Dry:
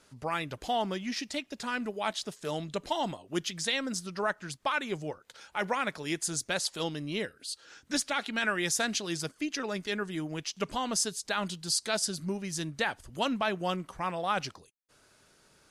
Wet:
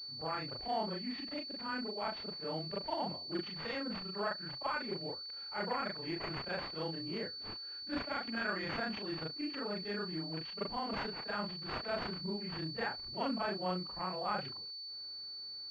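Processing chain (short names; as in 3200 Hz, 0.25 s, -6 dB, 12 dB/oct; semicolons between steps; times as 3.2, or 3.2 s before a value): short-time reversal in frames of 88 ms; pulse-width modulation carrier 4500 Hz; gain -2.5 dB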